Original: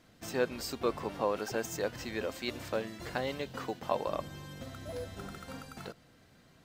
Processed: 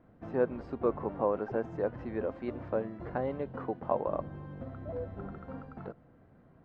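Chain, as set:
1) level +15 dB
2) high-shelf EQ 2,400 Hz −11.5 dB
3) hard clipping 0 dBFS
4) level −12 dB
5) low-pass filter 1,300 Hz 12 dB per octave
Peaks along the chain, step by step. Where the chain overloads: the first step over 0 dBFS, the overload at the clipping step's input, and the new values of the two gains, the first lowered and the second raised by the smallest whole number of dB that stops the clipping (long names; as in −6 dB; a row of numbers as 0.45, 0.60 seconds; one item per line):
−0.5, −2.0, −2.0, −14.0, −15.0 dBFS
no step passes full scale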